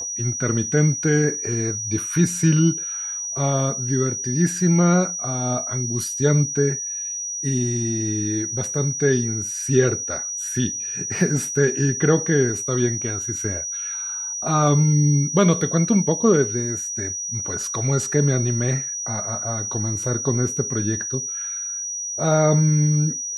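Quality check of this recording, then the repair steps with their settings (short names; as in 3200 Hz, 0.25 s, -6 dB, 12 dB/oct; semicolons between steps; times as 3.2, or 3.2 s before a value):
tone 5800 Hz -26 dBFS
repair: notch 5800 Hz, Q 30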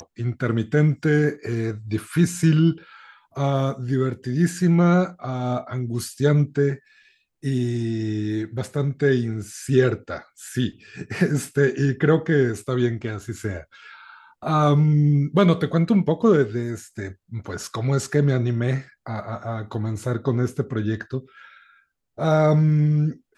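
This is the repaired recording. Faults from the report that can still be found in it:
none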